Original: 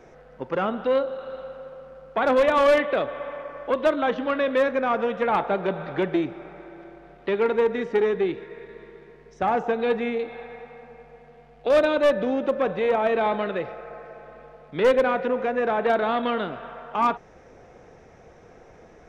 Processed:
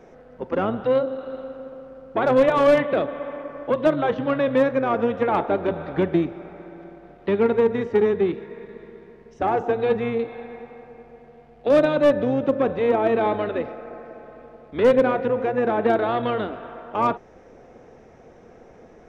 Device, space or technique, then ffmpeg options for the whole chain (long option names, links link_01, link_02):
octave pedal: -filter_complex "[0:a]equalizer=frequency=410:width=0.57:gain=5,asplit=2[link_01][link_02];[link_02]asetrate=22050,aresample=44100,atempo=2,volume=-8dB[link_03];[link_01][link_03]amix=inputs=2:normalize=0,volume=-2.5dB"